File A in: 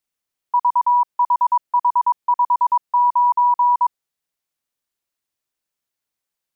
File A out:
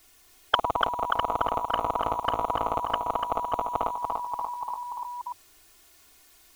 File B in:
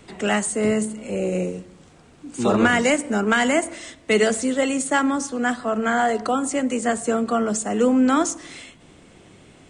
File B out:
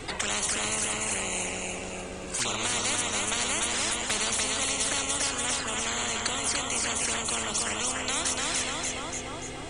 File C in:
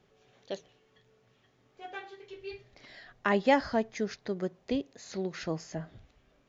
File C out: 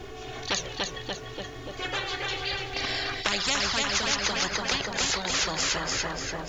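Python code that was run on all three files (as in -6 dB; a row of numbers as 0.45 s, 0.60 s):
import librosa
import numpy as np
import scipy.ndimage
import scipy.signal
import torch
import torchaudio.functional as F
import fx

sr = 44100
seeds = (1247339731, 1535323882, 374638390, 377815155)

y = fx.low_shelf(x, sr, hz=73.0, db=9.5)
y = fx.env_flanger(y, sr, rest_ms=2.8, full_db=-19.0)
y = fx.echo_feedback(y, sr, ms=291, feedback_pct=45, wet_db=-7)
y = fx.spectral_comp(y, sr, ratio=10.0)
y = y * 10.0 ** (-30 / 20.0) / np.sqrt(np.mean(np.square(y)))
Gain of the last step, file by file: +8.0 dB, -5.5 dB, +6.0 dB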